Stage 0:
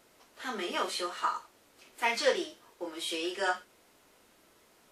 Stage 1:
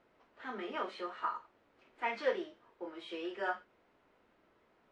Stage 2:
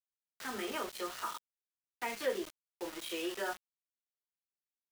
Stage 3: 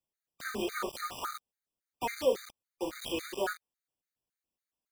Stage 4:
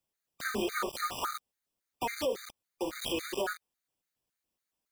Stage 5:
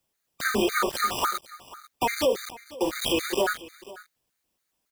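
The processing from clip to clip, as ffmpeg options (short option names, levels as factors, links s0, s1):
-af "lowpass=2100,volume=0.562"
-filter_complex "[0:a]acrossover=split=460[s0][s1];[s1]acompressor=threshold=0.00708:ratio=3[s2];[s0][s2]amix=inputs=2:normalize=0,aeval=exprs='val(0)*gte(abs(val(0)),0.00398)':c=same,highshelf=f=2700:g=9.5,volume=1.33"
-filter_complex "[0:a]asplit=2[s0][s1];[s1]acrusher=samples=24:mix=1:aa=0.000001:lfo=1:lforange=24:lforate=0.76,volume=0.398[s2];[s0][s2]amix=inputs=2:normalize=0,afftfilt=real='re*gt(sin(2*PI*3.6*pts/sr)*(1-2*mod(floor(b*sr/1024/1200),2)),0)':imag='im*gt(sin(2*PI*3.6*pts/sr)*(1-2*mod(floor(b*sr/1024/1200),2)),0)':win_size=1024:overlap=0.75,volume=1.68"
-af "alimiter=level_in=1.41:limit=0.0631:level=0:latency=1:release=202,volume=0.708,volume=1.68"
-af "aecho=1:1:493:0.112,volume=2.66"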